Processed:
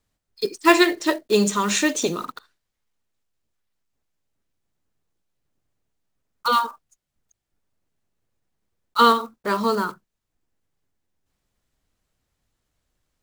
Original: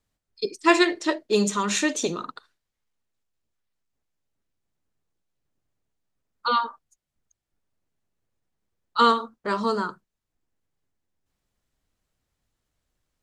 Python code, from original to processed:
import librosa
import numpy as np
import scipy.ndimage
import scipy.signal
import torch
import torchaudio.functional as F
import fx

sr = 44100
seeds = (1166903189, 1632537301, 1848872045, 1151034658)

y = fx.block_float(x, sr, bits=5)
y = y * 10.0 ** (3.0 / 20.0)